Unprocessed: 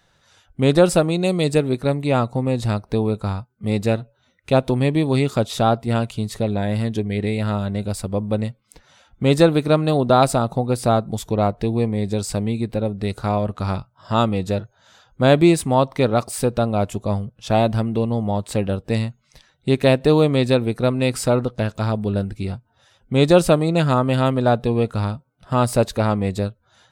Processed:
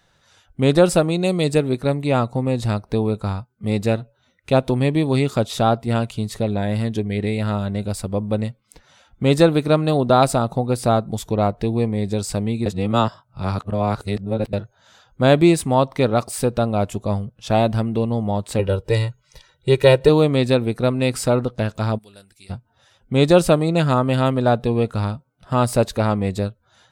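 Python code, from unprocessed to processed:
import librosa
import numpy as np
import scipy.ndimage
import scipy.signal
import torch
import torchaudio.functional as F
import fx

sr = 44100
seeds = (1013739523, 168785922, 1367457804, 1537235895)

y = fx.comb(x, sr, ms=2.1, depth=0.91, at=(18.59, 20.09))
y = fx.pre_emphasis(y, sr, coefficient=0.97, at=(21.97, 22.49), fade=0.02)
y = fx.edit(y, sr, fx.reverse_span(start_s=12.66, length_s=1.87), tone=tone)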